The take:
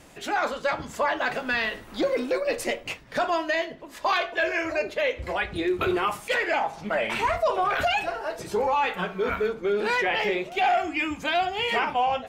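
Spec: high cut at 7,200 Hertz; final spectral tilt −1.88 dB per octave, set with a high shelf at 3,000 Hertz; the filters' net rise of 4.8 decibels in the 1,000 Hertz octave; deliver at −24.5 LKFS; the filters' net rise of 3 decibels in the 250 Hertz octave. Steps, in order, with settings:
low-pass filter 7,200 Hz
parametric band 250 Hz +4 dB
parametric band 1,000 Hz +6.5 dB
high-shelf EQ 3,000 Hz −3 dB
level −1 dB

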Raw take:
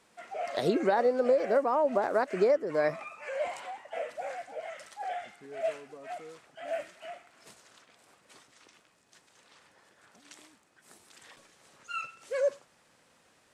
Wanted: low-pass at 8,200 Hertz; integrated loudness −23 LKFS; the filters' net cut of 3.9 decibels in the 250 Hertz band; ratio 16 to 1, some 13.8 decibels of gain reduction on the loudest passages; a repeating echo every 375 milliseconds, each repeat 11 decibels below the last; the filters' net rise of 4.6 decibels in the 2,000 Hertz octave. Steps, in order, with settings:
low-pass filter 8,200 Hz
parametric band 250 Hz −5.5 dB
parametric band 2,000 Hz +6 dB
downward compressor 16 to 1, threshold −35 dBFS
repeating echo 375 ms, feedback 28%, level −11 dB
level +18 dB

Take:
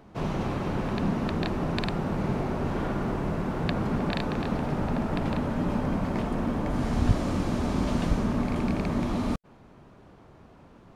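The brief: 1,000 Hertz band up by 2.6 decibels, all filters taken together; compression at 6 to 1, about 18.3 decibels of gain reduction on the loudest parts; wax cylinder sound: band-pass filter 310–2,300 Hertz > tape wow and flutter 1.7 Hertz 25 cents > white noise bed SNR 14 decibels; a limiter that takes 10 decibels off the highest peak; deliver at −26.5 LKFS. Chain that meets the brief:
parametric band 1,000 Hz +3.5 dB
downward compressor 6 to 1, threshold −36 dBFS
brickwall limiter −33 dBFS
band-pass filter 310–2,300 Hz
tape wow and flutter 1.7 Hz 25 cents
white noise bed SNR 14 dB
level +20 dB

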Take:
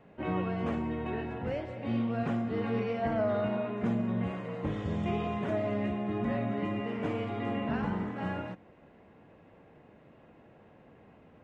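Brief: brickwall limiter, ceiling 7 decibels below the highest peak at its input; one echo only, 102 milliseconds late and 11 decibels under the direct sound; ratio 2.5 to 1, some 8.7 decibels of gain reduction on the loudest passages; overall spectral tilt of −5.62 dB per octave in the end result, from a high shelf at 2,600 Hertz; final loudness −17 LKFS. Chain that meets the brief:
high-shelf EQ 2,600 Hz −4 dB
downward compressor 2.5 to 1, threshold −40 dBFS
brickwall limiter −34.5 dBFS
single-tap delay 102 ms −11 dB
level +26 dB

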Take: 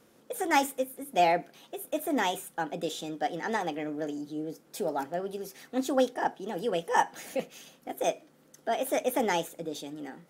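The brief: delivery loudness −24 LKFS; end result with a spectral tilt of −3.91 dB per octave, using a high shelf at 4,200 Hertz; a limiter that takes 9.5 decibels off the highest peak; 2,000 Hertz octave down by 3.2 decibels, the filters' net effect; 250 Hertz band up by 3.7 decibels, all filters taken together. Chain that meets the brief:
parametric band 250 Hz +4.5 dB
parametric band 2,000 Hz −5 dB
high-shelf EQ 4,200 Hz +5.5 dB
level +8.5 dB
brickwall limiter −11.5 dBFS

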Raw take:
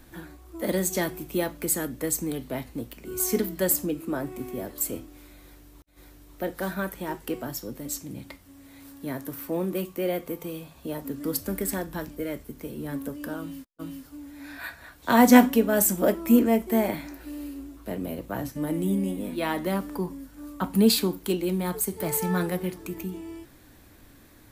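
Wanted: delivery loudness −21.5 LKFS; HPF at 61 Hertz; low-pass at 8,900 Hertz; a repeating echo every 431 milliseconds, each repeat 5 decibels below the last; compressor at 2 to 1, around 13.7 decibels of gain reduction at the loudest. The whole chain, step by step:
high-pass filter 61 Hz
low-pass filter 8,900 Hz
downward compressor 2 to 1, threshold −35 dBFS
repeating echo 431 ms, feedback 56%, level −5 dB
level +13 dB

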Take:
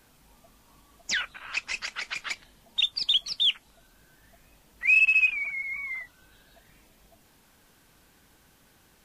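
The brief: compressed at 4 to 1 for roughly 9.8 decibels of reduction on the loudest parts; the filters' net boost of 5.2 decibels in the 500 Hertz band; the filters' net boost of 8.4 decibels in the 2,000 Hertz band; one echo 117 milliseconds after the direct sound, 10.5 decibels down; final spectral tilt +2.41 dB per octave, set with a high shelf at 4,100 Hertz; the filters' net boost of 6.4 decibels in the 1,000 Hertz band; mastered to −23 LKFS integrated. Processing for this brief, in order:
parametric band 500 Hz +5 dB
parametric band 1,000 Hz +3 dB
parametric band 2,000 Hz +8.5 dB
high-shelf EQ 4,100 Hz +7.5 dB
downward compressor 4 to 1, threshold −21 dBFS
single-tap delay 117 ms −10.5 dB

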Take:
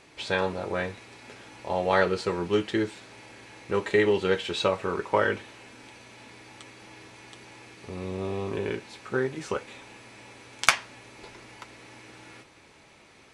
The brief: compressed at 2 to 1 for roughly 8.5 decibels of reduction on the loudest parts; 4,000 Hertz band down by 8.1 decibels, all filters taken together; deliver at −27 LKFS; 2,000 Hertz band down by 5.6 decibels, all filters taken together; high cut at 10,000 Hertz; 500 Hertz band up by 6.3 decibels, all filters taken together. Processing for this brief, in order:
low-pass filter 10,000 Hz
parametric band 500 Hz +8 dB
parametric band 2,000 Hz −6 dB
parametric band 4,000 Hz −8.5 dB
downward compressor 2 to 1, threshold −29 dBFS
level +3.5 dB

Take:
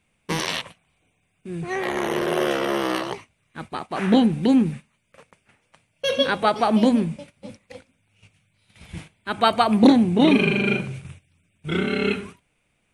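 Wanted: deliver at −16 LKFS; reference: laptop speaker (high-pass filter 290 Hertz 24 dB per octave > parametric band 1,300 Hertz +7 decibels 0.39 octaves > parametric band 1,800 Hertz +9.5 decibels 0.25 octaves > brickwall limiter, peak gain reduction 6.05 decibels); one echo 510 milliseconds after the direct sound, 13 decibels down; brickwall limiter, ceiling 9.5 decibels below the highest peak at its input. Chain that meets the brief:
brickwall limiter −12 dBFS
high-pass filter 290 Hz 24 dB per octave
parametric band 1,300 Hz +7 dB 0.39 octaves
parametric band 1,800 Hz +9.5 dB 0.25 octaves
single-tap delay 510 ms −13 dB
level +10 dB
brickwall limiter −3.5 dBFS

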